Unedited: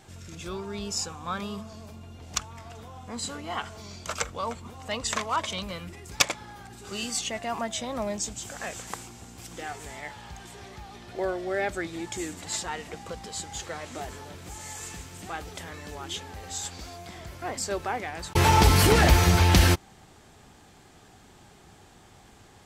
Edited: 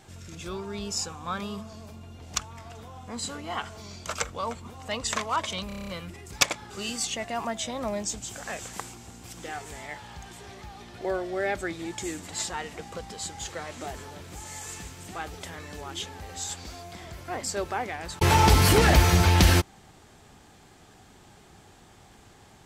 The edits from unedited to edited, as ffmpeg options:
-filter_complex "[0:a]asplit=9[s0][s1][s2][s3][s4][s5][s6][s7][s8];[s0]atrim=end=5.702[s9];[s1]atrim=start=5.668:end=5.702[s10];[s2]atrim=start=5.668:end=5.702[s11];[s3]atrim=start=5.668:end=5.702[s12];[s4]atrim=start=5.668:end=5.702[s13];[s5]atrim=start=5.668:end=5.702[s14];[s6]atrim=start=5.668:end=5.702[s15];[s7]atrim=start=5.668:end=6.492[s16];[s8]atrim=start=6.838[s17];[s9][s10]acrossfade=d=0.004:c1=hsin:c2=hsin[s18];[s18][s11]acrossfade=d=0.004:c1=hsin:c2=hsin[s19];[s19][s12]acrossfade=d=0.004:c1=hsin:c2=hsin[s20];[s20][s13]acrossfade=d=0.004:c1=hsin:c2=hsin[s21];[s21][s14]acrossfade=d=0.004:c1=hsin:c2=hsin[s22];[s22][s15]acrossfade=d=0.004:c1=hsin:c2=hsin[s23];[s23][s16]acrossfade=d=0.004:c1=hsin:c2=hsin[s24];[s24][s17]acrossfade=d=0.004:c1=hsin:c2=hsin"

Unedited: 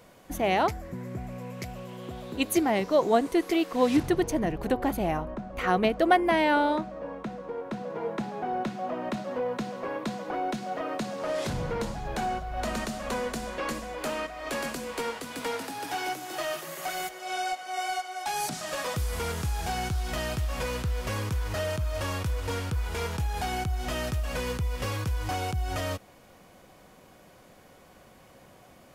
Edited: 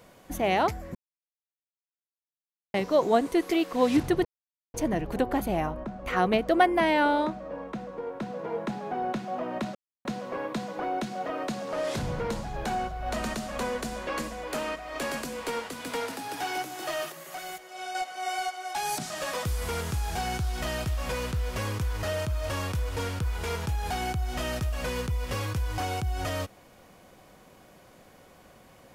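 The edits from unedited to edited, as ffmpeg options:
-filter_complex "[0:a]asplit=8[s0][s1][s2][s3][s4][s5][s6][s7];[s0]atrim=end=0.95,asetpts=PTS-STARTPTS,afade=t=out:st=0.946:d=0.004:c=hsin[s8];[s1]atrim=start=0.95:end=2.74,asetpts=PTS-STARTPTS,volume=0[s9];[s2]atrim=start=2.74:end=4.25,asetpts=PTS-STARTPTS,afade=t=in:d=0.004:c=hsin,afade=t=out:st=1.506:d=0.004:c=hsin,apad=pad_dur=0.49[s10];[s3]atrim=start=4.25:end=9.26,asetpts=PTS-STARTPTS,afade=t=in:d=0.004:c=hsin,afade=t=out:st=5.006:d=0.004:c=hsin[s11];[s4]atrim=start=9.26:end=9.56,asetpts=PTS-STARTPTS,volume=0[s12];[s5]atrim=start=9.56:end=16.632,asetpts=PTS-STARTPTS,afade=t=in:d=0.004:c=hsin[s13];[s6]atrim=start=16.628:end=17.462,asetpts=PTS-STARTPTS,volume=0.531[s14];[s7]atrim=start=17.458[s15];[s8][s9][s10][s11][s12][s13]concat=n=6:v=0:a=1[s16];[s16][s14]acrossfade=d=0.004:c1=hsin:c2=hsin[s17];[s17][s15]acrossfade=d=0.004:c1=hsin:c2=hsin"

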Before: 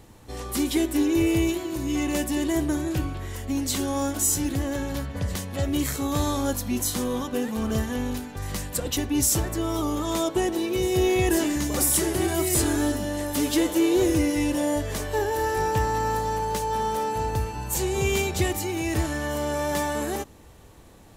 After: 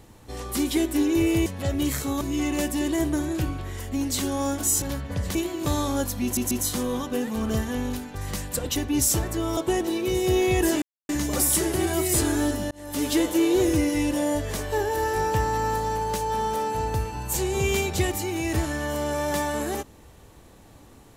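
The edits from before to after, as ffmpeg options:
-filter_complex "[0:a]asplit=11[s0][s1][s2][s3][s4][s5][s6][s7][s8][s9][s10];[s0]atrim=end=1.462[s11];[s1]atrim=start=5.398:end=6.152[s12];[s2]atrim=start=1.768:end=4.382[s13];[s3]atrim=start=4.868:end=5.402[s14];[s4]atrim=start=1.458:end=1.772[s15];[s5]atrim=start=6.148:end=6.862[s16];[s6]atrim=start=6.718:end=6.862[s17];[s7]atrim=start=6.718:end=9.782[s18];[s8]atrim=start=10.248:end=11.5,asetpts=PTS-STARTPTS,afade=t=out:st=1.248:d=0.004:c=hsin,apad=pad_dur=0.27[s19];[s9]atrim=start=11.5:end=13.12,asetpts=PTS-STARTPTS,afade=t=in:d=0.004:c=hsin,afade=t=out:st=1.616:d=0.004:c=hsin[s20];[s10]atrim=start=13.12,asetpts=PTS-STARTPTS,afade=t=in:d=0.37[s21];[s11][s12]acrossfade=d=0.004:c1=hsin:c2=hsin[s22];[s22][s13]acrossfade=d=0.004:c1=hsin:c2=hsin[s23];[s23][s14]acrossfade=d=0.004:c1=hsin:c2=hsin[s24];[s24][s15]acrossfade=d=0.004:c1=hsin:c2=hsin[s25];[s25][s16]acrossfade=d=0.004:c1=hsin:c2=hsin[s26];[s26][s17]acrossfade=d=0.004:c1=hsin:c2=hsin[s27];[s27][s18]acrossfade=d=0.004:c1=hsin:c2=hsin[s28];[s19][s20][s21]concat=n=3:v=0:a=1[s29];[s28][s29]acrossfade=d=0.004:c1=hsin:c2=hsin"

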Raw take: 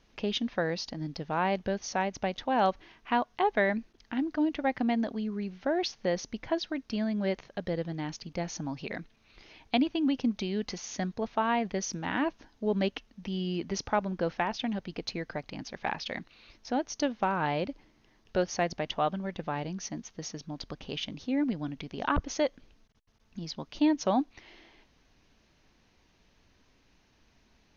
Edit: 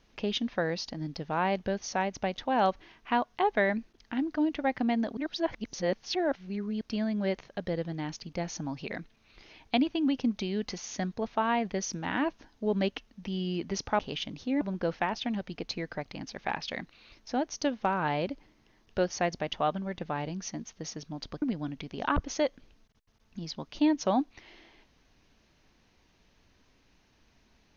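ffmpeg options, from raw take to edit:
-filter_complex "[0:a]asplit=6[s0][s1][s2][s3][s4][s5];[s0]atrim=end=5.172[s6];[s1]atrim=start=5.168:end=6.812,asetpts=PTS-STARTPTS,areverse[s7];[s2]atrim=start=6.808:end=13.992[s8];[s3]atrim=start=20.798:end=21.422[s9];[s4]atrim=start=13.988:end=20.802[s10];[s5]atrim=start=21.418[s11];[s6][s7]acrossfade=d=0.004:c1=hsin:c2=hsin[s12];[s12][s8]acrossfade=d=0.004:c1=hsin:c2=hsin[s13];[s13][s9]acrossfade=d=0.004:c1=hsin:c2=hsin[s14];[s14][s10]acrossfade=d=0.004:c1=hsin:c2=hsin[s15];[s15][s11]acrossfade=d=0.004:c1=hsin:c2=hsin"

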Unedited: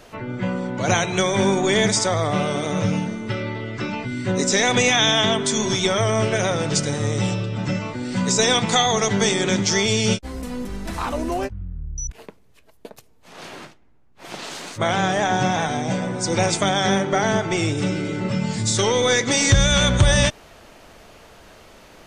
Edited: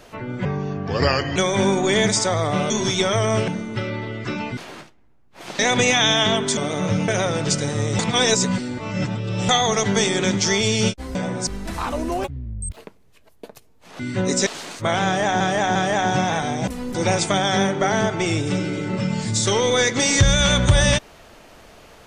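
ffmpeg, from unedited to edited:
-filter_complex "[0:a]asplit=21[s0][s1][s2][s3][s4][s5][s6][s7][s8][s9][s10][s11][s12][s13][s14][s15][s16][s17][s18][s19][s20];[s0]atrim=end=0.454[s21];[s1]atrim=start=0.45:end=1.16,asetpts=PTS-STARTPTS,asetrate=34398,aresample=44100,atrim=end_sample=40142,asetpts=PTS-STARTPTS[s22];[s2]atrim=start=1.156:end=2.502[s23];[s3]atrim=start=5.548:end=6.332[s24];[s4]atrim=start=3.008:end=4.102[s25];[s5]atrim=start=13.408:end=14.432[s26];[s6]atrim=start=4.568:end=5.552[s27];[s7]atrim=start=2.498:end=3.012[s28];[s8]atrim=start=6.328:end=7.242[s29];[s9]atrim=start=7.238:end=8.742,asetpts=PTS-STARTPTS,areverse[s30];[s10]atrim=start=8.738:end=10.402[s31];[s11]atrim=start=15.938:end=16.262[s32];[s12]atrim=start=10.668:end=11.444[s33];[s13]atrim=start=11.44:end=12.18,asetpts=PTS-STARTPTS,asetrate=62181,aresample=44100[s34];[s14]atrim=start=12.176:end=13.412[s35];[s15]atrim=start=4.098:end=4.572[s36];[s16]atrim=start=14.428:end=15.372[s37];[s17]atrim=start=15.018:end=15.372[s38];[s18]atrim=start=15.018:end=15.942[s39];[s19]atrim=start=10.398:end=10.672[s40];[s20]atrim=start=16.258[s41];[s21][s22]acrossfade=d=0.004:c1=hsin:c2=hsin[s42];[s42][s23]acrossfade=d=0.004:c1=hsin:c2=hsin[s43];[s43][s24]acrossfade=d=0.004:c1=hsin:c2=hsin[s44];[s44][s25]acrossfade=d=0.004:c1=hsin:c2=hsin[s45];[s45][s26]acrossfade=d=0.004:c1=hsin:c2=hsin[s46];[s46][s27]acrossfade=d=0.004:c1=hsin:c2=hsin[s47];[s47][s28]acrossfade=d=0.004:c1=hsin:c2=hsin[s48];[s48][s29]acrossfade=d=0.004:c1=hsin:c2=hsin[s49];[s49][s30]acrossfade=d=0.004:c1=hsin:c2=hsin[s50];[s50][s31]acrossfade=d=0.004:c1=hsin:c2=hsin[s51];[s51][s32]acrossfade=d=0.004:c1=hsin:c2=hsin[s52];[s52][s33]acrossfade=d=0.004:c1=hsin:c2=hsin[s53];[s53][s34]acrossfade=d=0.004:c1=hsin:c2=hsin[s54];[s54][s35]acrossfade=d=0.004:c1=hsin:c2=hsin[s55];[s55][s36]acrossfade=d=0.004:c1=hsin:c2=hsin[s56];[s56][s37]acrossfade=d=0.004:c1=hsin:c2=hsin[s57];[s57][s38]acrossfade=d=0.004:c1=hsin:c2=hsin[s58];[s58][s39]acrossfade=d=0.004:c1=hsin:c2=hsin[s59];[s59][s40]acrossfade=d=0.004:c1=hsin:c2=hsin[s60];[s60][s41]acrossfade=d=0.004:c1=hsin:c2=hsin"

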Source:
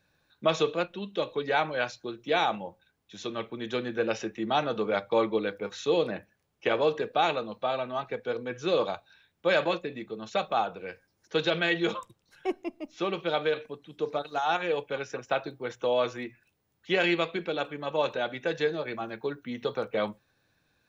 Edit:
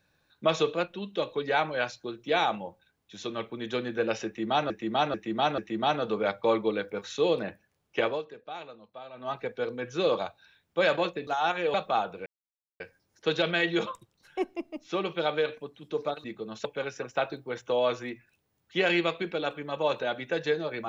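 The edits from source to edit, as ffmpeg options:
-filter_complex "[0:a]asplit=11[s0][s1][s2][s3][s4][s5][s6][s7][s8][s9][s10];[s0]atrim=end=4.702[s11];[s1]atrim=start=4.258:end=4.702[s12];[s2]atrim=start=4.258:end=4.702[s13];[s3]atrim=start=4.258:end=6.91,asetpts=PTS-STARTPTS,afade=t=out:st=2.452:d=0.2:silence=0.177828[s14];[s4]atrim=start=6.91:end=7.81,asetpts=PTS-STARTPTS,volume=0.178[s15];[s5]atrim=start=7.81:end=9.952,asetpts=PTS-STARTPTS,afade=t=in:d=0.2:silence=0.177828[s16];[s6]atrim=start=14.318:end=14.792[s17];[s7]atrim=start=10.358:end=10.88,asetpts=PTS-STARTPTS,afade=t=out:st=0.518:d=0.004:c=hsin,apad=pad_dur=0.54[s18];[s8]atrim=start=10.88:end=14.322,asetpts=PTS-STARTPTS,afade=t=in:d=0.004:c=hsin[s19];[s9]atrim=start=9.948:end=10.362[s20];[s10]atrim=start=14.788[s21];[s11][s12]acrossfade=d=0.004:c1=hsin:c2=hsin[s22];[s22][s13]acrossfade=d=0.004:c1=hsin:c2=hsin[s23];[s14][s15][s16]concat=n=3:v=0:a=1[s24];[s23][s24]acrossfade=d=0.004:c1=hsin:c2=hsin[s25];[s25][s17]acrossfade=d=0.004:c1=hsin:c2=hsin[s26];[s18][s19]concat=n=2:v=0:a=1[s27];[s26][s27]acrossfade=d=0.004:c1=hsin:c2=hsin[s28];[s28][s20]acrossfade=d=0.004:c1=hsin:c2=hsin[s29];[s29][s21]acrossfade=d=0.004:c1=hsin:c2=hsin"

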